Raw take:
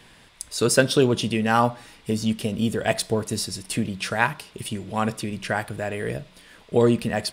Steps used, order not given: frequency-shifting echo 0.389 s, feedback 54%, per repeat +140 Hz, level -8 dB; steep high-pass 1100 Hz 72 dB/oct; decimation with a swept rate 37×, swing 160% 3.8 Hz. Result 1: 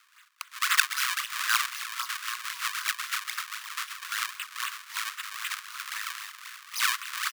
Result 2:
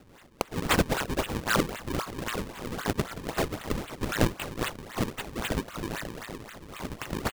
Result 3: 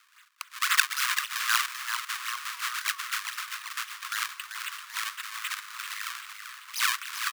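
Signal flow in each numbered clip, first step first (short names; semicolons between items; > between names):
frequency-shifting echo > decimation with a swept rate > steep high-pass; frequency-shifting echo > steep high-pass > decimation with a swept rate; decimation with a swept rate > frequency-shifting echo > steep high-pass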